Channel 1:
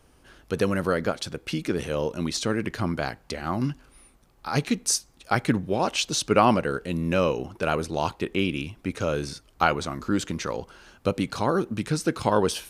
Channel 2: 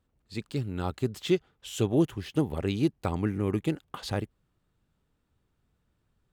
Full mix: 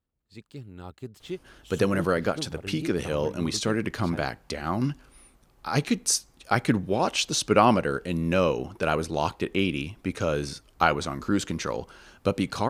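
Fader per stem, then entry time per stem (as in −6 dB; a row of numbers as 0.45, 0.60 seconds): 0.0, −10.0 decibels; 1.20, 0.00 seconds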